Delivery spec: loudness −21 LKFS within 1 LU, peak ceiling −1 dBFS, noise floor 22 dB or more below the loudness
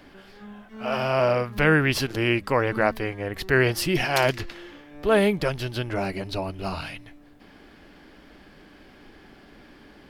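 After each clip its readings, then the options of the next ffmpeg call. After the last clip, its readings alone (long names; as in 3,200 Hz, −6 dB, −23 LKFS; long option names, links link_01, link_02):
integrated loudness −24.0 LKFS; sample peak −6.0 dBFS; target loudness −21.0 LKFS
→ -af "volume=3dB"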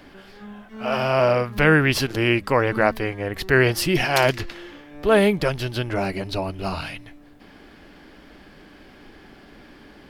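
integrated loudness −21.0 LKFS; sample peak −3.0 dBFS; background noise floor −48 dBFS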